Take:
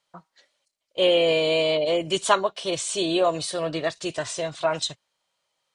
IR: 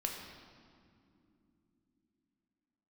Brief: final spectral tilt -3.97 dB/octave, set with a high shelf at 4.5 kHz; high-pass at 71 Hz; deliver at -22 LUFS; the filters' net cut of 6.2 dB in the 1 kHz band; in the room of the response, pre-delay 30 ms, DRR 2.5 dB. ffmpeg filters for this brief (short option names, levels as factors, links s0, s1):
-filter_complex "[0:a]highpass=71,equalizer=f=1000:t=o:g=-8,highshelf=f=4500:g=-7,asplit=2[s0][s1];[1:a]atrim=start_sample=2205,adelay=30[s2];[s1][s2]afir=irnorm=-1:irlink=0,volume=0.596[s3];[s0][s3]amix=inputs=2:normalize=0,volume=1.26"